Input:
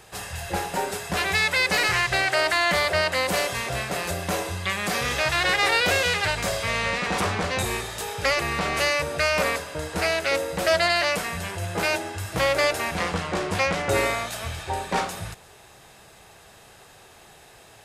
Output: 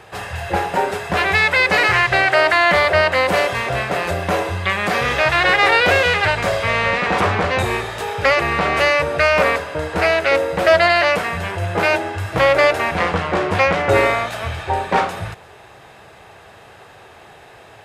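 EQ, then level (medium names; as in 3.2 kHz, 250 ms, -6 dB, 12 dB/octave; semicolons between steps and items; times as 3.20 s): tone controls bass -14 dB, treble -14 dB; peaking EQ 96 Hz +13 dB 2 oct; +8.5 dB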